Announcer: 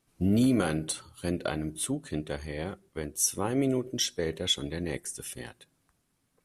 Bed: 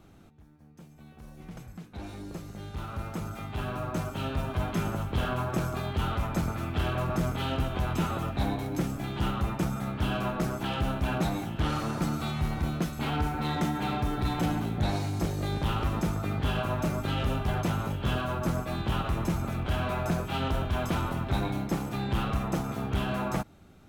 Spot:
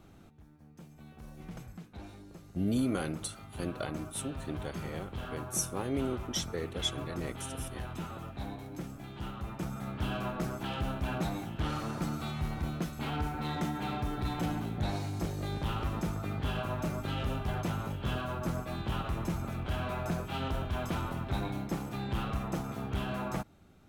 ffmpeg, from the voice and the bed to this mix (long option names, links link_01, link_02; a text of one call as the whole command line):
ffmpeg -i stem1.wav -i stem2.wav -filter_complex "[0:a]adelay=2350,volume=-6dB[link_01];[1:a]volume=5dB,afade=type=out:start_time=1.55:duration=0.7:silence=0.316228,afade=type=in:start_time=9.39:duration=0.57:silence=0.501187[link_02];[link_01][link_02]amix=inputs=2:normalize=0" out.wav